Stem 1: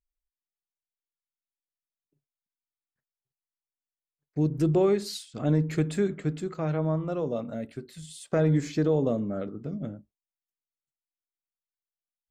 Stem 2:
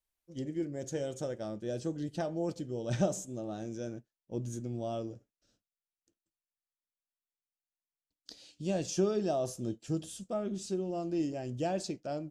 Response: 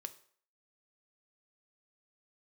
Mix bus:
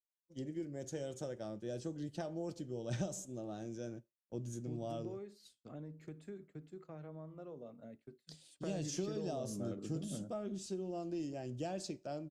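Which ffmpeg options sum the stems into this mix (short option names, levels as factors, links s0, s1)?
-filter_complex "[0:a]equalizer=f=410:w=0.37:g=3.5,acompressor=threshold=0.0224:ratio=3,adelay=300,volume=0.335,afade=t=in:st=8.36:d=0.72:silence=0.375837,asplit=2[s0][s1];[s1]volume=0.562[s2];[1:a]volume=0.447,asplit=2[s3][s4];[s4]volume=0.473[s5];[2:a]atrim=start_sample=2205[s6];[s2][s5]amix=inputs=2:normalize=0[s7];[s7][s6]afir=irnorm=-1:irlink=0[s8];[s0][s3][s8]amix=inputs=3:normalize=0,agate=range=0.0224:threshold=0.00316:ratio=3:detection=peak,acrossover=split=140|3000[s9][s10][s11];[s10]acompressor=threshold=0.0141:ratio=6[s12];[s9][s12][s11]amix=inputs=3:normalize=0"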